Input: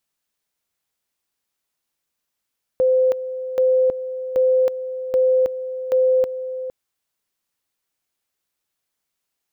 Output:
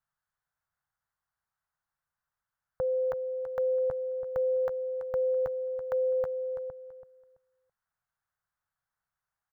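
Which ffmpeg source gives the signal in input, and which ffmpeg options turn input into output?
-f lavfi -i "aevalsrc='pow(10,(-13-12*gte(mod(t,0.78),0.32))/20)*sin(2*PI*515*t)':d=3.9:s=44100"
-af "firequalizer=gain_entry='entry(140,0);entry(270,-21);entry(760,-3);entry(1500,2);entry(2400,-17)':delay=0.05:min_phase=1,aecho=1:1:332|664|996:0.282|0.0648|0.0149"

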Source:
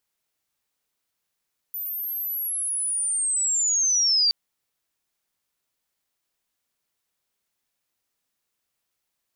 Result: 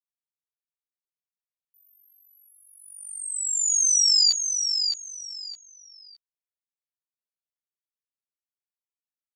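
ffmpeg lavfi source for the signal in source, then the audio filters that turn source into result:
-f lavfi -i "aevalsrc='pow(10,(-28.5+12*t/2.57)/20)*sin(2*PI*(14000*t-9400*t*t/(2*2.57)))':d=2.57:s=44100"
-filter_complex "[0:a]asplit=2[a][b];[b]adelay=13,volume=-4dB[c];[a][c]amix=inputs=2:normalize=0,agate=range=-31dB:threshold=-21dB:ratio=16:detection=peak,asplit=2[d][e];[e]aecho=0:1:614|1228|1842:0.501|0.125|0.0313[f];[d][f]amix=inputs=2:normalize=0"

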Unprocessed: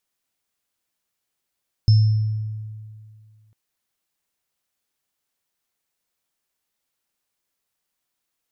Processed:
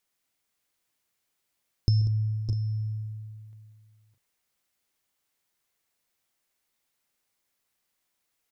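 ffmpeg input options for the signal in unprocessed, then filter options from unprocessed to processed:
-f lavfi -i "aevalsrc='0.355*pow(10,-3*t/2.15)*sin(2*PI*108*t)+0.0501*pow(10,-3*t/0.76)*sin(2*PI*5280*t)':d=1.65:s=44100"
-filter_complex "[0:a]equalizer=f=2.1k:t=o:w=0.22:g=3,acompressor=threshold=-20dB:ratio=6,asplit=2[a][b];[b]aecho=0:1:134|191|608|617|649:0.141|0.211|0.316|0.299|0.178[c];[a][c]amix=inputs=2:normalize=0"

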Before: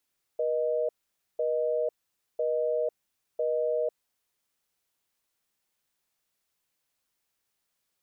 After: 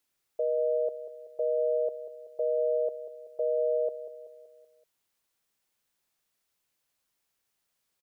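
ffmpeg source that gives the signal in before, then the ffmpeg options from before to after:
-f lavfi -i "aevalsrc='0.0422*(sin(2*PI*480*t)+sin(2*PI*620*t))*clip(min(mod(t,1),0.5-mod(t,1))/0.005,0,1)':d=3.95:s=44100"
-af "aecho=1:1:190|380|570|760|950:0.211|0.11|0.0571|0.0297|0.0155"

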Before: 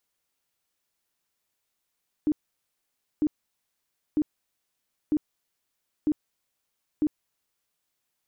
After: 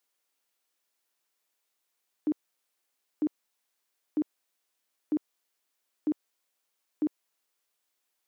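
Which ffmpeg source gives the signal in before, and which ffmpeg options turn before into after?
-f lavfi -i "aevalsrc='0.106*sin(2*PI*302*mod(t,0.95))*lt(mod(t,0.95),15/302)':d=5.7:s=44100"
-af "highpass=300"

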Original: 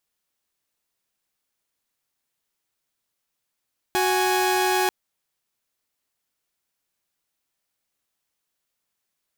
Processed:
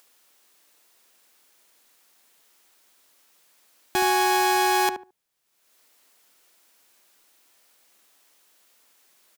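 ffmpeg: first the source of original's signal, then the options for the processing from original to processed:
-f lavfi -i "aevalsrc='0.106*((2*mod(369.99*t,1)-1)+(2*mod(830.61*t,1)-1))':d=0.94:s=44100"
-filter_complex "[0:a]acrossover=split=230[a][b];[b]acompressor=mode=upward:threshold=-45dB:ratio=2.5[c];[a][c]amix=inputs=2:normalize=0,asplit=2[d][e];[e]adelay=72,lowpass=f=1.1k:p=1,volume=-7dB,asplit=2[f][g];[g]adelay=72,lowpass=f=1.1k:p=1,volume=0.23,asplit=2[h][i];[i]adelay=72,lowpass=f=1.1k:p=1,volume=0.23[j];[d][f][h][j]amix=inputs=4:normalize=0"

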